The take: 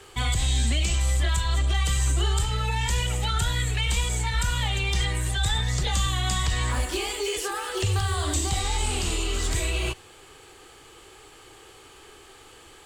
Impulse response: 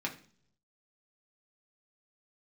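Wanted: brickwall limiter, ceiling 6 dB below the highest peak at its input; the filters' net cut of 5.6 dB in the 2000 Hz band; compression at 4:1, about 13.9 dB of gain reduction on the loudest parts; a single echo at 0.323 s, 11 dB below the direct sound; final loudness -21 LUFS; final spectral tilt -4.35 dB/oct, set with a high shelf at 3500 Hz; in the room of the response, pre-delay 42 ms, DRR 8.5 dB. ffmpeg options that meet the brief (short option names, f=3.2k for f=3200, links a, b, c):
-filter_complex "[0:a]equalizer=f=2k:t=o:g=-5,highshelf=f=3.5k:g=-6.5,acompressor=threshold=-38dB:ratio=4,alimiter=level_in=8.5dB:limit=-24dB:level=0:latency=1,volume=-8.5dB,aecho=1:1:323:0.282,asplit=2[a][b];[1:a]atrim=start_sample=2205,adelay=42[c];[b][c]afir=irnorm=-1:irlink=0,volume=-12dB[d];[a][d]amix=inputs=2:normalize=0,volume=21dB"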